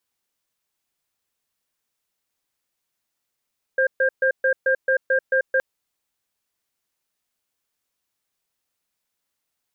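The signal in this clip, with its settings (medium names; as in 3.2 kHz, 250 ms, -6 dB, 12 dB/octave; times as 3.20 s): cadence 526 Hz, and 1.6 kHz, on 0.09 s, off 0.13 s, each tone -18.5 dBFS 1.82 s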